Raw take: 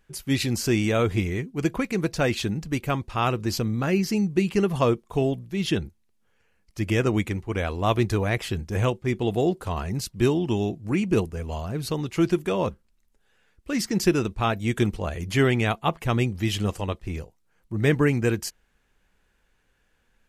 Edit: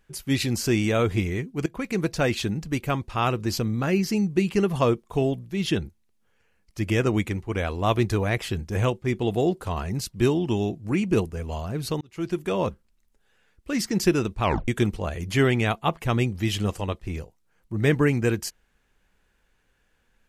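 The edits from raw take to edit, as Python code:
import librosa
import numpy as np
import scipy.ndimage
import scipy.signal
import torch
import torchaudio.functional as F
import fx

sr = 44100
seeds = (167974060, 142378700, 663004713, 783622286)

y = fx.edit(x, sr, fx.fade_in_from(start_s=1.66, length_s=0.26, floor_db=-20.0),
    fx.fade_in_span(start_s=12.01, length_s=0.55),
    fx.tape_stop(start_s=14.43, length_s=0.25), tone=tone)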